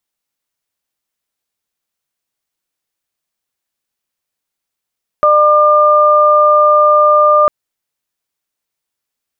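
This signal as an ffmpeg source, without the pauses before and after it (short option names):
-f lavfi -i "aevalsrc='0.335*sin(2*PI*600*t)+0.422*sin(2*PI*1200*t)':d=2.25:s=44100"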